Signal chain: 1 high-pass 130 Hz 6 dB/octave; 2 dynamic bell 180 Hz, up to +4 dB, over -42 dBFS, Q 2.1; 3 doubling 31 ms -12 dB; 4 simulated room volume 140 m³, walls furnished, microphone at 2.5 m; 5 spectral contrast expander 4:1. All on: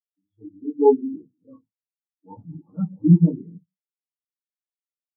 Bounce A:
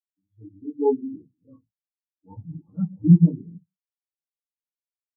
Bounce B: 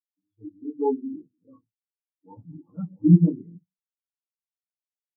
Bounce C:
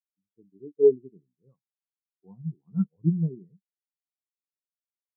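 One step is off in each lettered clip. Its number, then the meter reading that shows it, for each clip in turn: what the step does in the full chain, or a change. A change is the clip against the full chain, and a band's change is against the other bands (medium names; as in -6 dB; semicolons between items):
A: 1, crest factor change +1.5 dB; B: 3, 500 Hz band -7.5 dB; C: 4, momentary loudness spread change -4 LU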